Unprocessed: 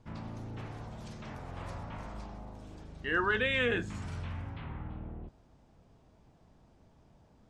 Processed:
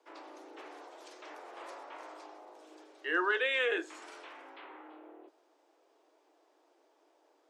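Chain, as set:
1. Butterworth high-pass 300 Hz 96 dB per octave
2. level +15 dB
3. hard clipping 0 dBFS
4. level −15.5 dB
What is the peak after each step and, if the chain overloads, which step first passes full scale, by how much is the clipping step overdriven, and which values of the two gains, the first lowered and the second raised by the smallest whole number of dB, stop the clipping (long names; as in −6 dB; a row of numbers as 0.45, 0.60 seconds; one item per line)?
−18.0, −3.0, −3.0, −18.5 dBFS
no step passes full scale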